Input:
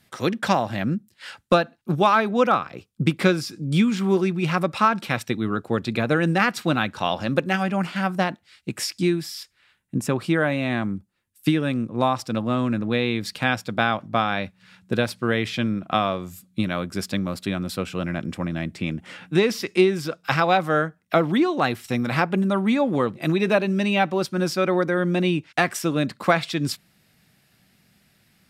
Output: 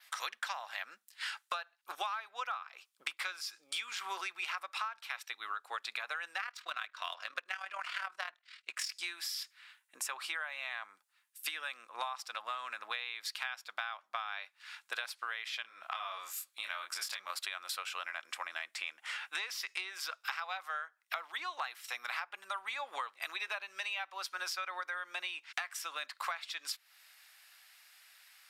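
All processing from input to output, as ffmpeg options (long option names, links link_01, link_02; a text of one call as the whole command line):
ffmpeg -i in.wav -filter_complex "[0:a]asettb=1/sr,asplit=3[link_01][link_02][link_03];[link_01]atrim=end=6.414[link_04];[link_02]atrim=start=6.41:end=8.9,asetpts=PTS-STARTPTS,afade=type=in:duration=0.004:curve=qsin,afade=type=out:start_time=2.486:duration=0.004:curve=qsin,asuperstop=centerf=840:order=4:qfactor=5.6,adynamicsmooth=sensitivity=7.5:basefreq=5400,tremolo=f=39:d=0.667[link_05];[link_03]atrim=start=8.896[link_06];[link_04][link_05]acrossfade=duration=0.004:curve1=hsin:curve2=qsin[link_07];[link_07][link_06]acrossfade=duration=0.004:curve1=qsin:curve2=hsin,asettb=1/sr,asplit=3[link_08][link_09][link_10];[link_08]atrim=end=15.624[link_11];[link_09]atrim=start=15.62:end=17.3,asetpts=PTS-STARTPTS,afade=type=in:duration=0.004:curve=qsin,afade=type=out:start_time=1.676:duration=0.004:curve=qsin,acompressor=threshold=-29dB:ratio=3:attack=3.2:release=140:knee=1:detection=peak,asplit=2[link_12][link_13];[link_13]adelay=26,volume=-4dB[link_14];[link_12][link_14]amix=inputs=2:normalize=0,atrim=end_sample=74088[link_15];[link_10]atrim=start=17.296[link_16];[link_11][link_15]acrossfade=duration=0.004:curve1=hsin:curve2=qsin[link_17];[link_17][link_16]acrossfade=duration=0.004:curve1=qsin:curve2=hsin,highpass=frequency=960:width=0.5412,highpass=frequency=960:width=1.3066,adynamicequalizer=threshold=0.00251:dfrequency=8500:dqfactor=1.9:tfrequency=8500:tqfactor=1.9:attack=5:release=100:ratio=0.375:range=2:mode=cutabove:tftype=bell,acompressor=threshold=-39dB:ratio=12,volume=3.5dB" out.wav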